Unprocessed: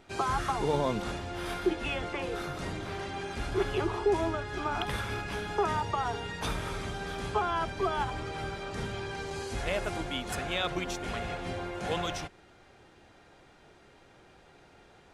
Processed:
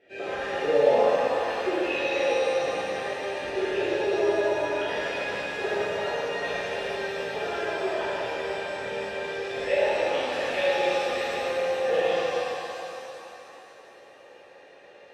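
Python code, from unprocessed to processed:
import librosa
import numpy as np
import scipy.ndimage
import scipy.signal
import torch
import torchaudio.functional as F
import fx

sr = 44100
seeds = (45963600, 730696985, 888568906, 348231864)

y = fx.vowel_filter(x, sr, vowel='e')
y = fx.rev_shimmer(y, sr, seeds[0], rt60_s=2.9, semitones=7, shimmer_db=-8, drr_db=-11.5)
y = y * librosa.db_to_amplitude(6.0)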